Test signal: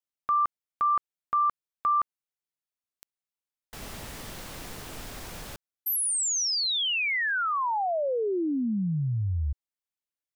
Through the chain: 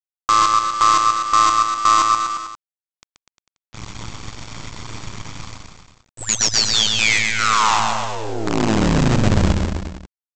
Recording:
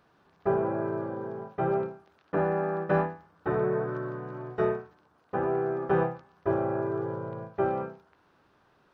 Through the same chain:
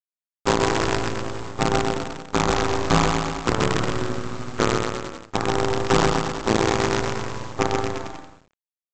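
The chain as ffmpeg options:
-filter_complex "[0:a]aecho=1:1:0.9:0.67,aeval=exprs='val(0)+0.001*(sin(2*PI*50*n/s)+sin(2*PI*2*50*n/s)/2+sin(2*PI*3*50*n/s)/3+sin(2*PI*4*50*n/s)/4+sin(2*PI*5*50*n/s)/5)':c=same,tremolo=f=110:d=0.974,aresample=16000,acrusher=bits=5:dc=4:mix=0:aa=0.000001,aresample=44100,acontrast=69,asplit=2[s0][s1];[s1]aecho=0:1:130|247|352.3|447.1|532.4:0.631|0.398|0.251|0.158|0.1[s2];[s0][s2]amix=inputs=2:normalize=0,volume=1.41"

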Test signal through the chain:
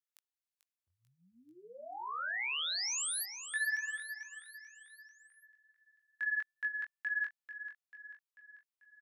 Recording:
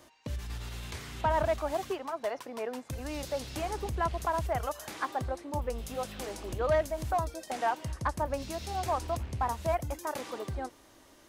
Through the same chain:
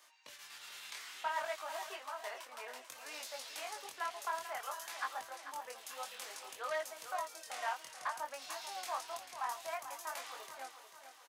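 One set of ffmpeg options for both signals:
-af "highpass=1200,flanger=delay=19:depth=6.2:speed=0.59,aecho=1:1:441|882|1323|1764|2205:0.299|0.149|0.0746|0.0373|0.0187,volume=1.12"

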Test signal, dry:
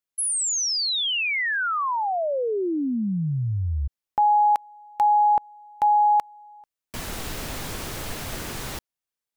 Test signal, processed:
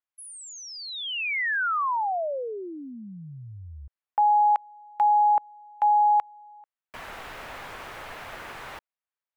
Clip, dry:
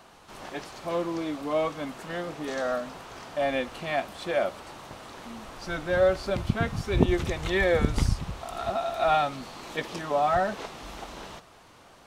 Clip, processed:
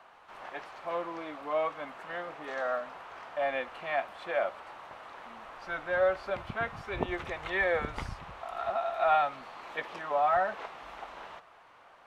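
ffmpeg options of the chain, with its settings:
-filter_complex "[0:a]acrossover=split=560 2700:gain=0.158 1 0.126[s0][s1][s2];[s0][s1][s2]amix=inputs=3:normalize=0"

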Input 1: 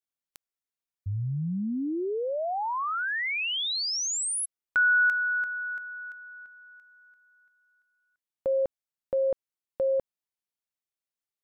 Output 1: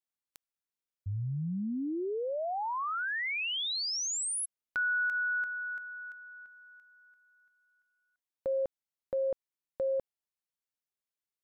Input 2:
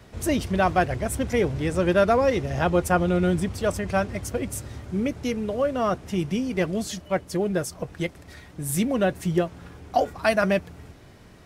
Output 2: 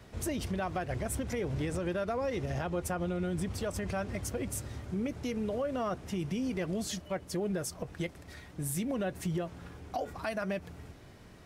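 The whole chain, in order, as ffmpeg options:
-af "acompressor=threshold=0.0708:ratio=10:attack=0.42:release=230:knee=1:detection=peak,volume=0.631"

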